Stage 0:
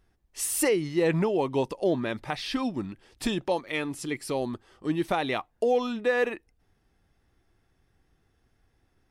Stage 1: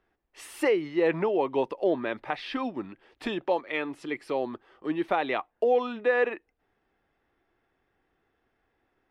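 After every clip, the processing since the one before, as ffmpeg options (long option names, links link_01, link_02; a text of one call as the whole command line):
ffmpeg -i in.wav -filter_complex "[0:a]acrossover=split=270 3300:gain=0.178 1 0.0891[link_01][link_02][link_03];[link_01][link_02][link_03]amix=inputs=3:normalize=0,volume=1.5dB" out.wav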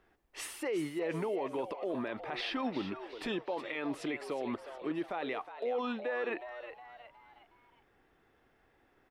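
ffmpeg -i in.wav -filter_complex "[0:a]areverse,acompressor=threshold=-31dB:ratio=12,areverse,alimiter=level_in=8dB:limit=-24dB:level=0:latency=1:release=72,volume=-8dB,asplit=5[link_01][link_02][link_03][link_04][link_05];[link_02]adelay=364,afreqshift=120,volume=-11dB[link_06];[link_03]adelay=728,afreqshift=240,volume=-18.3dB[link_07];[link_04]adelay=1092,afreqshift=360,volume=-25.7dB[link_08];[link_05]adelay=1456,afreqshift=480,volume=-33dB[link_09];[link_01][link_06][link_07][link_08][link_09]amix=inputs=5:normalize=0,volume=4.5dB" out.wav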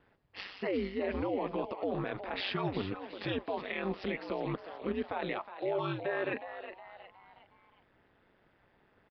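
ffmpeg -i in.wav -af "aeval=exprs='val(0)*sin(2*PI*96*n/s)':channel_layout=same,aresample=11025,aresample=44100,volume=4dB" out.wav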